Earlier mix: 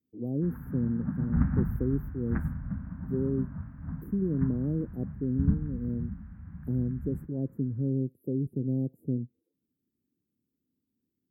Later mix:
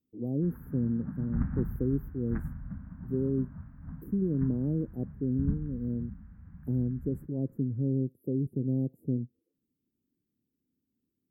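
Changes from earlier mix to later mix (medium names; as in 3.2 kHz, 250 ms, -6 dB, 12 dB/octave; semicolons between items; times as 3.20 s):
background -6.0 dB; master: remove high-pass 46 Hz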